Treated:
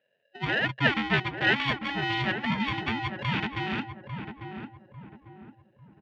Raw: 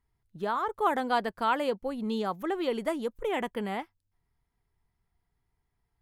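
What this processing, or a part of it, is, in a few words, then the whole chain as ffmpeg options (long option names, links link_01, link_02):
ring modulator pedal into a guitar cabinet: -filter_complex "[0:a]aeval=exprs='val(0)*sgn(sin(2*PI*560*n/s))':channel_layout=same,highpass=110,equalizer=frequency=130:width_type=q:width=4:gain=8,equalizer=frequency=210:width_type=q:width=4:gain=7,equalizer=frequency=1200:width_type=q:width=4:gain=-10,equalizer=frequency=1800:width_type=q:width=4:gain=9,equalizer=frequency=2900:width_type=q:width=4:gain=8,lowpass=frequency=3700:width=0.5412,lowpass=frequency=3700:width=1.3066,asettb=1/sr,asplit=3[link_01][link_02][link_03];[link_01]atrim=end=1.564[link_04];[link_02]atrim=start=1.56:end=2.22,asetpts=PTS-STARTPTS,afade=type=in:duration=0.004:curve=qsin,afade=type=out:start_time=0.656:duration=0.004:curve=qsin,tiltshelf=frequency=800:gain=-4[link_05];[link_03]atrim=start=2.216[link_06];[link_04][link_05]acrossfade=duration=0.004:curve1=hsin:curve2=qsin[link_07];[link_07][link_06]acrossfade=duration=0.004:curve1=qsin:curve2=hsin,asplit=2[link_08][link_09];[link_09]adelay=847,lowpass=frequency=990:poles=1,volume=-6dB,asplit=2[link_10][link_11];[link_11]adelay=847,lowpass=frequency=990:poles=1,volume=0.4,asplit=2[link_12][link_13];[link_13]adelay=847,lowpass=frequency=990:poles=1,volume=0.4,asplit=2[link_14][link_15];[link_15]adelay=847,lowpass=frequency=990:poles=1,volume=0.4,asplit=2[link_16][link_17];[link_17]adelay=847,lowpass=frequency=990:poles=1,volume=0.4[link_18];[link_08][link_10][link_12][link_14][link_16][link_18]amix=inputs=6:normalize=0"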